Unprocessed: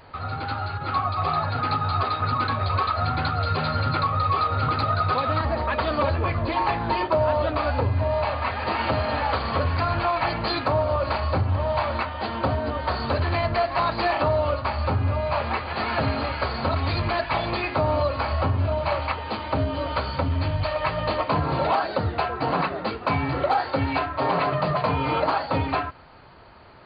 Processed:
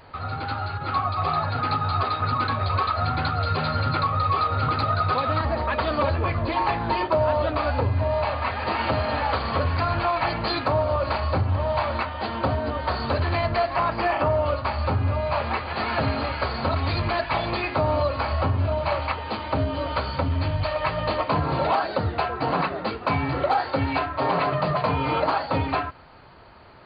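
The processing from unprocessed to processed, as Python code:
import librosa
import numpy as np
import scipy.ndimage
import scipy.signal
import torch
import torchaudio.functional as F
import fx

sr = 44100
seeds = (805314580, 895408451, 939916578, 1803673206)

y = fx.peak_eq(x, sr, hz=4000.0, db=-12.0, octaves=0.34, at=(13.76, 14.46))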